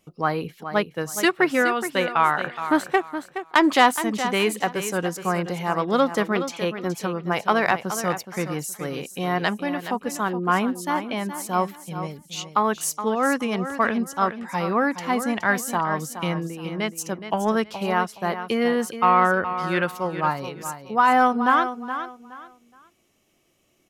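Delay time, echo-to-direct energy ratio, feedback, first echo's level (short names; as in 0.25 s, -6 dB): 0.42 s, -10.0 dB, 25%, -10.5 dB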